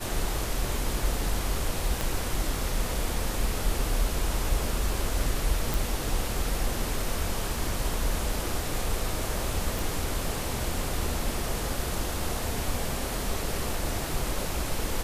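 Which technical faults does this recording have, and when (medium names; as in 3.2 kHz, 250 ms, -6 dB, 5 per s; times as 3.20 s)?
2.01 s: pop
5.74 s: pop
9.79 s: pop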